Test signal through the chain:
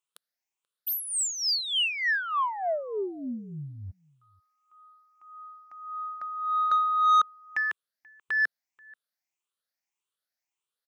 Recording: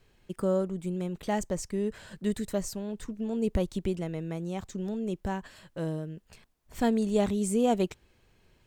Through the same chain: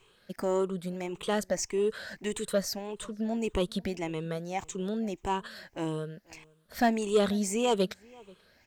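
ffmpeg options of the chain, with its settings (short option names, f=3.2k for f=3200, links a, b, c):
-filter_complex "[0:a]afftfilt=real='re*pow(10,12/40*sin(2*PI*(0.68*log(max(b,1)*sr/1024/100)/log(2)-(1.7)*(pts-256)/sr)))':imag='im*pow(10,12/40*sin(2*PI*(0.68*log(max(b,1)*sr/1024/100)/log(2)-(1.7)*(pts-256)/sr)))':win_size=1024:overlap=0.75,asplit=2[a][b];[b]adelay=484,volume=-26dB,highshelf=f=4k:g=-10.9[c];[a][c]amix=inputs=2:normalize=0,asplit=2[d][e];[e]highpass=f=720:p=1,volume=14dB,asoftclip=type=tanh:threshold=-10dB[f];[d][f]amix=inputs=2:normalize=0,lowpass=f=7.3k:p=1,volume=-6dB,volume=-3.5dB"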